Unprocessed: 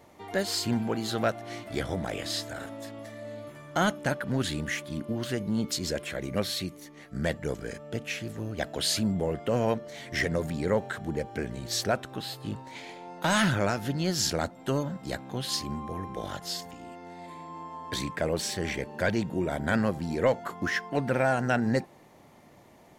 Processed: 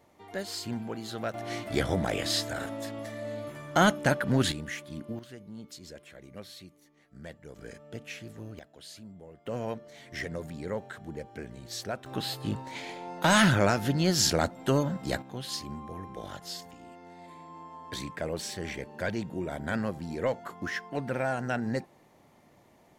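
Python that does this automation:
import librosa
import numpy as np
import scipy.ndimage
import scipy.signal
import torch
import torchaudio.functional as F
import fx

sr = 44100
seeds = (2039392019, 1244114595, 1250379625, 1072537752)

y = fx.gain(x, sr, db=fx.steps((0.0, -7.0), (1.34, 3.5), (4.52, -5.5), (5.19, -15.5), (7.56, -7.5), (8.59, -20.0), (9.46, -8.0), (12.06, 3.0), (15.22, -5.0)))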